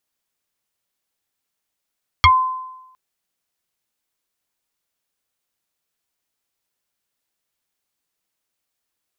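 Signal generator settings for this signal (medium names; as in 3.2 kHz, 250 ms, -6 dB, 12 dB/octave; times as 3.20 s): FM tone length 0.71 s, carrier 1.03 kHz, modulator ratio 1.08, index 3.4, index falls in 0.11 s exponential, decay 0.96 s, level -5.5 dB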